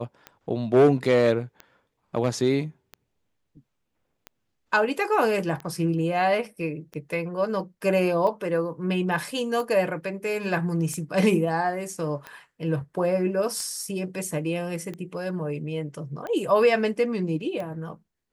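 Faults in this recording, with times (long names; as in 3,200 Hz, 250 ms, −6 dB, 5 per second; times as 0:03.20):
scratch tick 45 rpm −22 dBFS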